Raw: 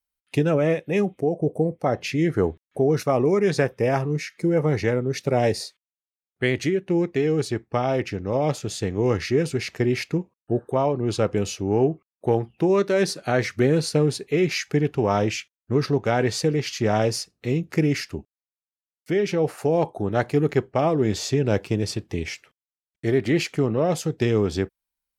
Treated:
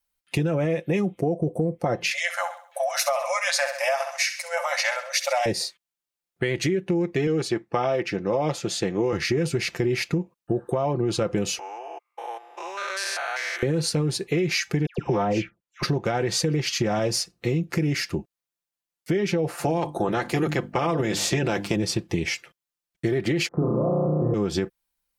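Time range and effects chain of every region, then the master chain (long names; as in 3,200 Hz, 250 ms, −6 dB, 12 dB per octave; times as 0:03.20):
0:02.11–0:05.46: linear-phase brick-wall high-pass 530 Hz + high-shelf EQ 2,400 Hz +10 dB + repeating echo 66 ms, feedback 43%, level −12 dB
0:07.27–0:09.13: high-pass filter 260 Hz 6 dB per octave + high-shelf EQ 8,600 Hz −8.5 dB
0:11.59–0:13.63: spectrum averaged block by block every 200 ms + high-pass filter 840 Hz 24 dB per octave
0:14.86–0:15.83: high-shelf EQ 3,500 Hz −11.5 dB + all-pass dispersion lows, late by 122 ms, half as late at 1,600 Hz
0:19.59–0:21.75: ceiling on every frequency bin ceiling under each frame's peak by 13 dB + mains-hum notches 50/100/150/200/250/300 Hz
0:23.48–0:24.34: Butterworth low-pass 1,200 Hz 48 dB per octave + flutter between parallel walls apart 5.6 metres, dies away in 1.4 s
whole clip: comb filter 5.8 ms, depth 51%; brickwall limiter −14.5 dBFS; downward compressor, threshold −25 dBFS; level +5 dB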